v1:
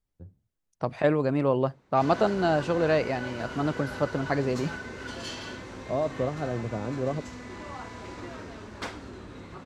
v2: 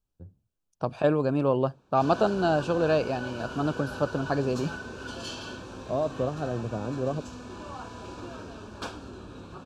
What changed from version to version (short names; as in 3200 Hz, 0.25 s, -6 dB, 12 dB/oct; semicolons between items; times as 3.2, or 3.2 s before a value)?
master: add Butterworth band-stop 2000 Hz, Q 3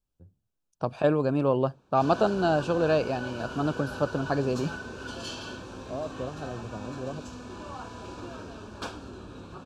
first voice -7.0 dB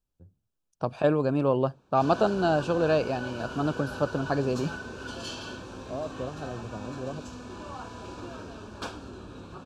none